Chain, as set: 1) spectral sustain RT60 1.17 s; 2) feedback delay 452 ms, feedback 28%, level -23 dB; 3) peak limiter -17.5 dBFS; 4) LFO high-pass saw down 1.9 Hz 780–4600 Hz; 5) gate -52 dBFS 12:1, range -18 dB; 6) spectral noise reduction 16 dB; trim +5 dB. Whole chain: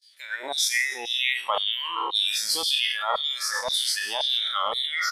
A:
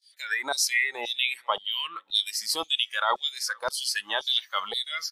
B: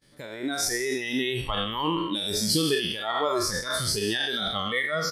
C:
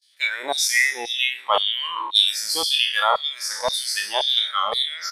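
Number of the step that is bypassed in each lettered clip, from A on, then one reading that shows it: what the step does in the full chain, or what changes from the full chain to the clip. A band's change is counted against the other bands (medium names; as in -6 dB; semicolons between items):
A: 1, 250 Hz band +2.5 dB; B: 4, 250 Hz band +23.0 dB; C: 3, mean gain reduction 3.5 dB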